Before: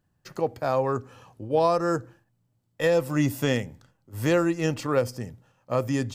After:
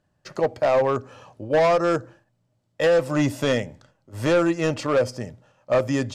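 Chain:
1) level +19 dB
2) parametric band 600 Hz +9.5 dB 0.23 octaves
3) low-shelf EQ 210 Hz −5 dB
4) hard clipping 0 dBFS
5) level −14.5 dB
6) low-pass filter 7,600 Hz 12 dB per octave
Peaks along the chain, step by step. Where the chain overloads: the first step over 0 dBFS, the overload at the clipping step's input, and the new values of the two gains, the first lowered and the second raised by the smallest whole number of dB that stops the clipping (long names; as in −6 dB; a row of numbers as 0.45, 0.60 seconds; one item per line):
+8.0, +10.0, +9.5, 0.0, −14.5, −14.0 dBFS
step 1, 9.5 dB
step 1 +9 dB, step 5 −4.5 dB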